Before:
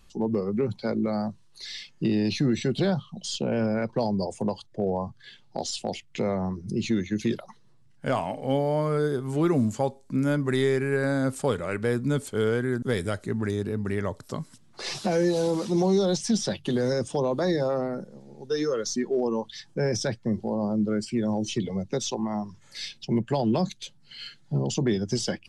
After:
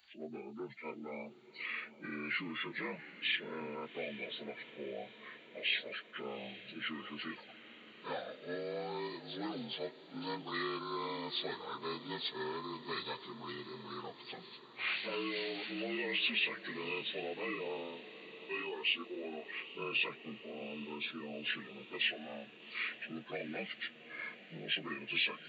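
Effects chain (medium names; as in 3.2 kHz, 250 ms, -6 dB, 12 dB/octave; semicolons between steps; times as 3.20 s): frequency axis rescaled in octaves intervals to 76%; differentiator; echo that smears into a reverb 795 ms, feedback 63%, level -15 dB; trim +9 dB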